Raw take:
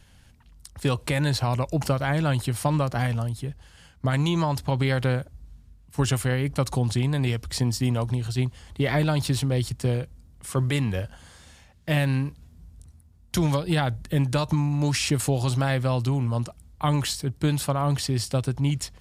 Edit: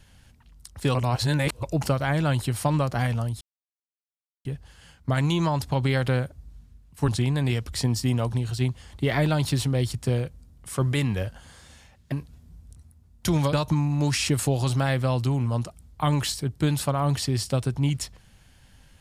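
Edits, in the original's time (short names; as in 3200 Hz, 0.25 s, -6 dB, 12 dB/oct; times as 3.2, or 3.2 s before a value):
0.95–1.63 reverse
3.41 insert silence 1.04 s
6.04–6.85 cut
11.89–12.21 cut
13.62–14.34 cut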